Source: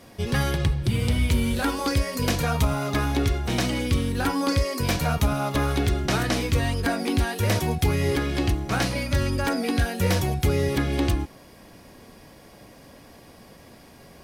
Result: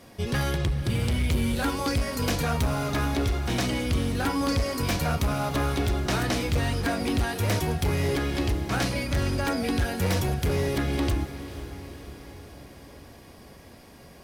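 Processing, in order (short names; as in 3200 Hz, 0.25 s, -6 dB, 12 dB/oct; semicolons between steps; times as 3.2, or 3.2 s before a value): hard clip -19 dBFS, distortion -14 dB; diffused feedback echo 0.49 s, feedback 59%, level -13 dB; gain -1.5 dB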